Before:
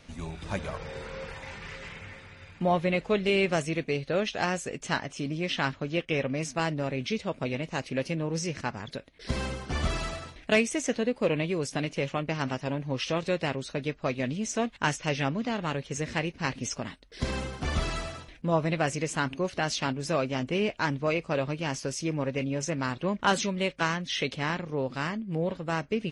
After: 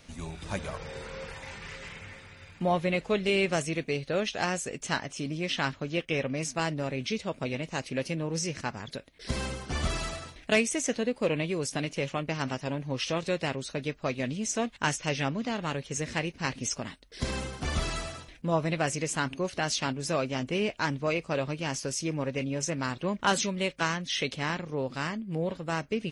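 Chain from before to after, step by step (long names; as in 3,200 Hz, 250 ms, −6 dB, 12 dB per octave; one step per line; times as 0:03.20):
high-shelf EQ 6,400 Hz +9 dB
level −1.5 dB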